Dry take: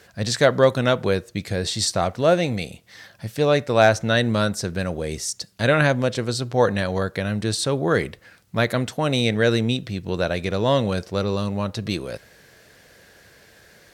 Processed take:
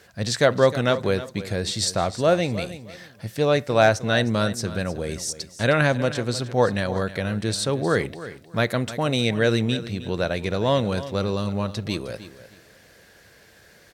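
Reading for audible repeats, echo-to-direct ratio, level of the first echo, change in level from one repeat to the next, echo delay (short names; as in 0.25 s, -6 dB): 2, -14.5 dB, -14.5 dB, -12.5 dB, 0.31 s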